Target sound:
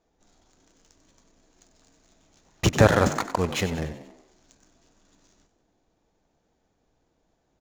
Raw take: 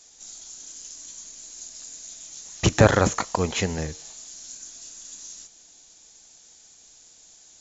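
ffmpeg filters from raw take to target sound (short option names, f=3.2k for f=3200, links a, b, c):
-filter_complex "[0:a]adynamicsmooth=sensitivity=7:basefreq=880,asplit=6[a][b][c][d][e][f];[b]adelay=94,afreqshift=58,volume=-12.5dB[g];[c]adelay=188,afreqshift=116,volume=-18.5dB[h];[d]adelay=282,afreqshift=174,volume=-24.5dB[i];[e]adelay=376,afreqshift=232,volume=-30.6dB[j];[f]adelay=470,afreqshift=290,volume=-36.6dB[k];[a][g][h][i][j][k]amix=inputs=6:normalize=0,volume=-1dB"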